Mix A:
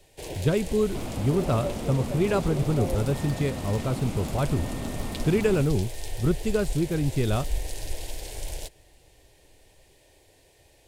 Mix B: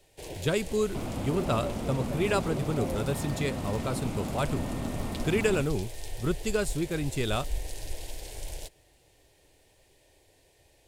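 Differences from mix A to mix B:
speech: add spectral tilt +2.5 dB per octave
first sound −4.0 dB

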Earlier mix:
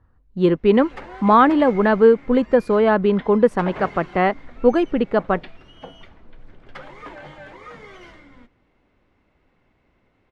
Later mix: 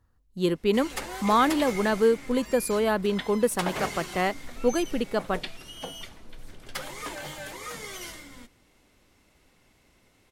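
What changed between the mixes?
speech −8.5 dB
master: remove low-pass filter 2,000 Hz 12 dB per octave

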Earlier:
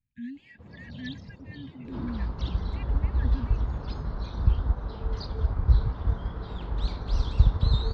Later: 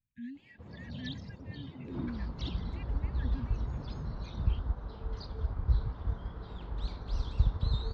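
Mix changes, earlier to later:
speech −5.0 dB
second sound −7.5 dB

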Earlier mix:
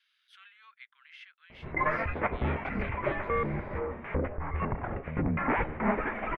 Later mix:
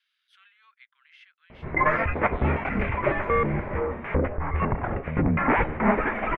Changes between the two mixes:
speech −3.0 dB
background +6.5 dB

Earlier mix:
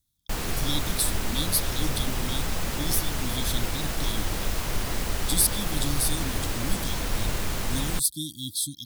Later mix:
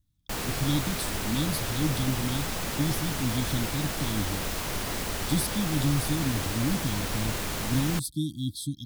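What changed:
speech: add spectral tilt −3.5 dB per octave
master: add low-shelf EQ 64 Hz −11 dB

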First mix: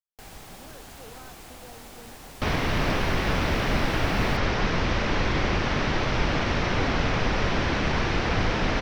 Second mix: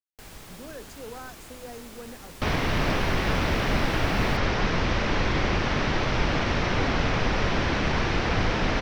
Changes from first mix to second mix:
speech +8.0 dB
first sound: add parametric band 760 Hz −6 dB 0.37 octaves

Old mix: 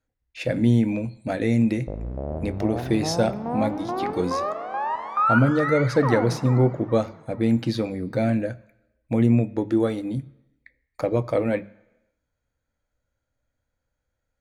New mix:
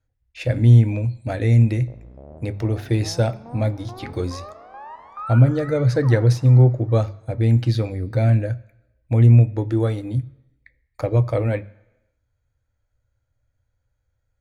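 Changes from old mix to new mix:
speech: add low shelf with overshoot 140 Hz +7 dB, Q 3
background −11.5 dB

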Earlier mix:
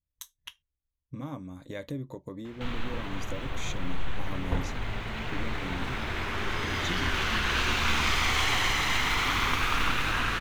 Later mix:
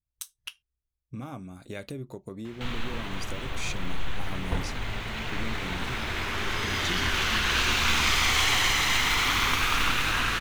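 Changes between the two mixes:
speech: remove EQ curve with evenly spaced ripples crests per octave 1.1, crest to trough 9 dB
master: add high-shelf EQ 2,900 Hz +7.5 dB

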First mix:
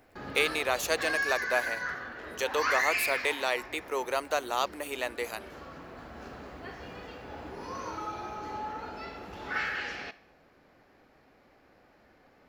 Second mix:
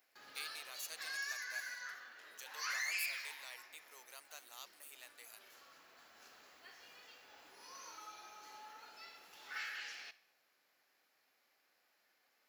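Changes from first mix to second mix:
speech −11.5 dB
master: add first difference

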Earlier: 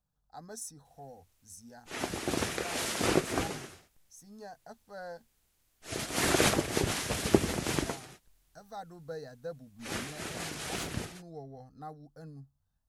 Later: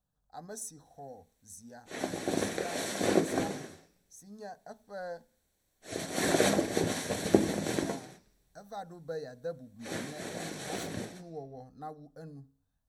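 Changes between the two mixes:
background −7.0 dB
reverb: on

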